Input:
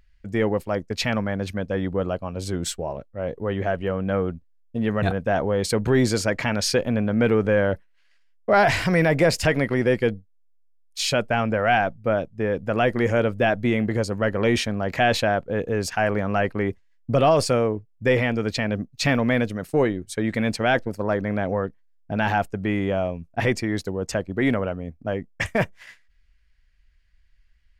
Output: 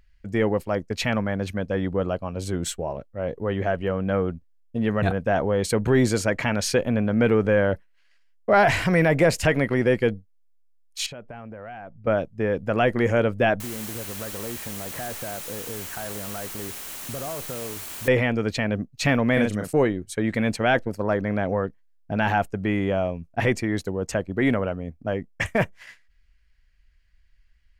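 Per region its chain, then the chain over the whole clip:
0:11.06–0:12.07: low-pass filter 1,400 Hz 6 dB per octave + downward compressor 8 to 1, threshold −36 dBFS + floating-point word with a short mantissa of 8 bits
0:13.60–0:18.08: low-pass filter 1,700 Hz 24 dB per octave + downward compressor 4 to 1, threshold −34 dBFS + bit-depth reduction 6 bits, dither triangular
0:19.33–0:19.73: parametric band 8,100 Hz +7.5 dB 1.1 octaves + double-tracking delay 38 ms −4 dB
whole clip: notch filter 3,600 Hz, Q 28; dynamic equaliser 4,900 Hz, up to −6 dB, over −48 dBFS, Q 3.3

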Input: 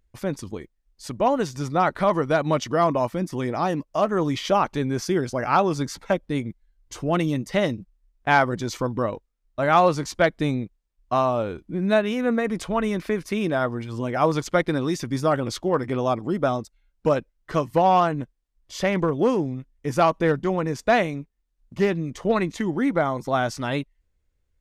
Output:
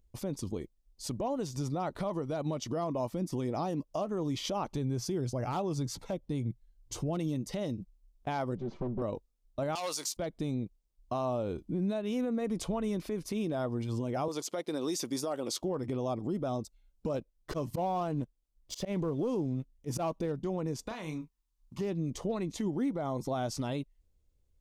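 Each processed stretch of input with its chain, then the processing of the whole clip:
0:04.72–0:07.17: parametric band 120 Hz +7.5 dB 0.48 octaves + hard clipping −12 dBFS
0:08.57–0:09.02: lower of the sound and its delayed copy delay 5.2 ms + downward compressor 1.5 to 1, threshold −36 dBFS + head-to-tape spacing loss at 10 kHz 44 dB
0:09.75–0:10.17: high-pass filter 580 Hz 6 dB per octave + spectral tilt +4.5 dB per octave + saturating transformer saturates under 3,600 Hz
0:14.28–0:15.62: high-pass filter 340 Hz + high-shelf EQ 4,700 Hz +5 dB
0:17.14–0:20.26: leveller curve on the samples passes 1 + volume swells 159 ms
0:20.87–0:21.81: low shelf with overshoot 800 Hz −6 dB, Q 3 + downward compressor 8 to 1, threshold −31 dBFS + double-tracking delay 32 ms −8 dB
whole clip: parametric band 1,700 Hz −12.5 dB 1.3 octaves; downward compressor, threshold −28 dBFS; brickwall limiter −24.5 dBFS

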